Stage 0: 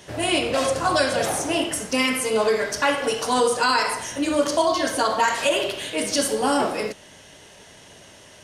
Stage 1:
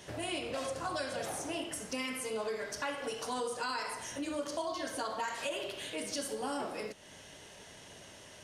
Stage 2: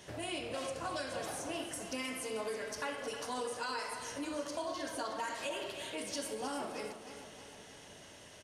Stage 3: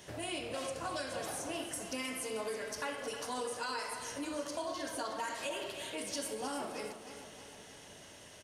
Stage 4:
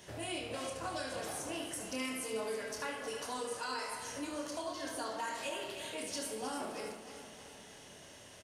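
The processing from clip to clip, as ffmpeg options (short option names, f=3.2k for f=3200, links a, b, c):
-af "acompressor=threshold=-37dB:ratio=2,volume=-5.5dB"
-af "aecho=1:1:313|626|939|1252|1565|1878|2191:0.299|0.17|0.097|0.0553|0.0315|0.018|0.0102,volume=-2.5dB"
-af "highshelf=f=10k:g=5.5"
-af "aecho=1:1:27|74:0.473|0.376,volume=-2dB"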